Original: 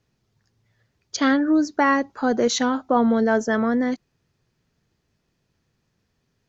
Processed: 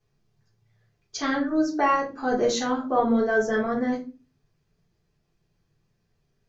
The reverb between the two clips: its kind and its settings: shoebox room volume 140 m³, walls furnished, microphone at 3.7 m; gain -11 dB

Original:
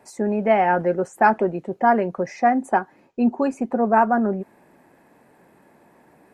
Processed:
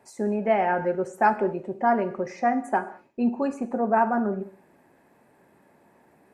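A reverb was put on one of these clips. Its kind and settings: non-linear reverb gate 0.24 s falling, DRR 9.5 dB; gain -5 dB

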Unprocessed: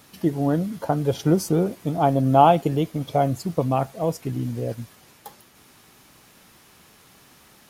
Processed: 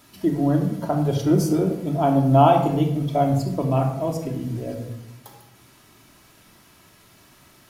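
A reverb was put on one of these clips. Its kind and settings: shoebox room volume 2400 m³, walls furnished, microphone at 2.9 m; gain -3 dB

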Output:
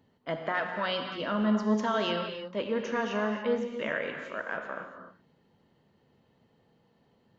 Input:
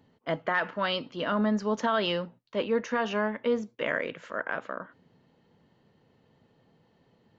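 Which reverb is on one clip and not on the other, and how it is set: non-linear reverb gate 0.32 s flat, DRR 3.5 dB; gain -3.5 dB

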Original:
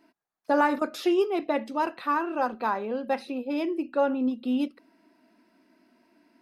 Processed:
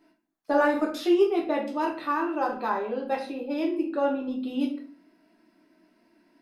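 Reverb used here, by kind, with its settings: shoebox room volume 44 m³, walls mixed, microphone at 0.69 m; gain -3.5 dB

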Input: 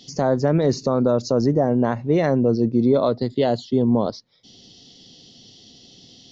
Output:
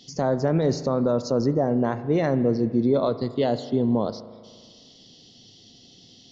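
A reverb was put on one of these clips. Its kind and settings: spring tank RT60 1.8 s, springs 37 ms, chirp 50 ms, DRR 12.5 dB; gain -3.5 dB

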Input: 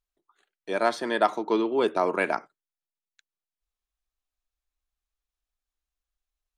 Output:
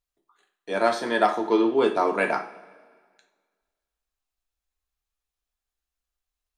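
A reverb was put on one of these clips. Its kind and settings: two-slope reverb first 0.37 s, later 1.7 s, from -18 dB, DRR 2 dB

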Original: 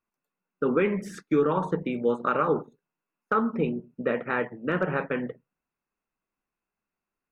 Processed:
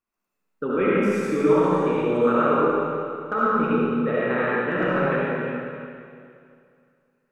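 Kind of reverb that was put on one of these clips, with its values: digital reverb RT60 2.4 s, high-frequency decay 0.95×, pre-delay 30 ms, DRR -8 dB; gain -3 dB

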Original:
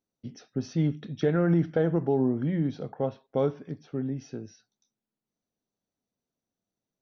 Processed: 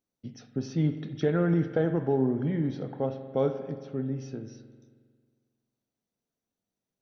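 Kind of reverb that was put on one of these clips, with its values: spring tank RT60 1.8 s, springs 45 ms, chirp 40 ms, DRR 9 dB; gain -1 dB

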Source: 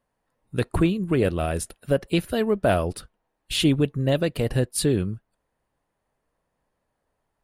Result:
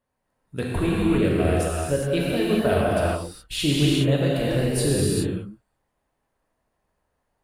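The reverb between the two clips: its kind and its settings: non-linear reverb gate 0.44 s flat, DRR -6 dB; gain -5 dB

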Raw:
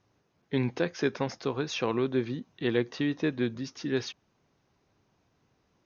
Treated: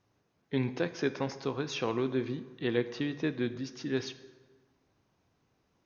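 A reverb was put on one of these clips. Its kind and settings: plate-style reverb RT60 1.4 s, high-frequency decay 0.65×, pre-delay 0 ms, DRR 11.5 dB; gain -3 dB

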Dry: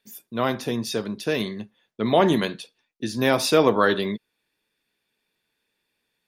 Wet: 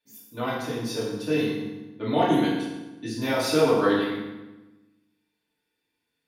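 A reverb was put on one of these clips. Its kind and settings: FDN reverb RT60 1.1 s, low-frequency decay 1.3×, high-frequency decay 0.8×, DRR -9.5 dB; gain -13.5 dB

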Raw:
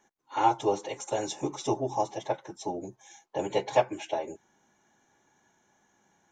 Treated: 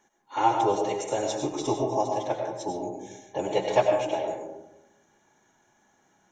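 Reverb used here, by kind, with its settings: digital reverb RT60 1 s, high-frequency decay 0.35×, pre-delay 60 ms, DRR 2.5 dB; gain +1 dB

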